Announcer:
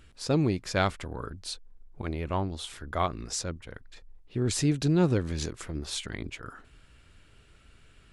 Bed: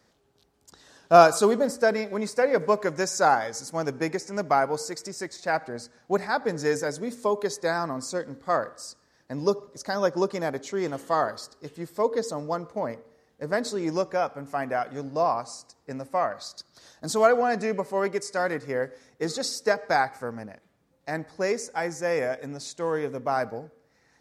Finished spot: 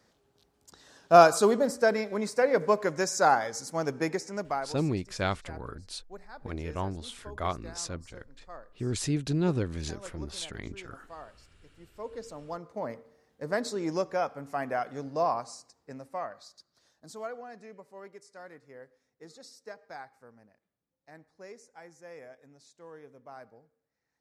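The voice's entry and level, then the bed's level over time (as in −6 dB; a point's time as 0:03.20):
4.45 s, −3.5 dB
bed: 0:04.26 −2 dB
0:05.00 −21.5 dB
0:11.58 −21.5 dB
0:12.98 −3.5 dB
0:15.37 −3.5 dB
0:17.49 −21 dB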